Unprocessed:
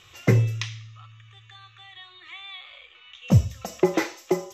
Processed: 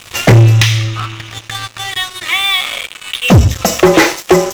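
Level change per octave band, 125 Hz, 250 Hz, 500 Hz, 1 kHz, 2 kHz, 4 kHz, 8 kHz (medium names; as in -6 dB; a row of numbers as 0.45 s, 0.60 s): +13.5 dB, +13.5 dB, +14.5 dB, +19.5 dB, +20.5 dB, +24.0 dB, +21.5 dB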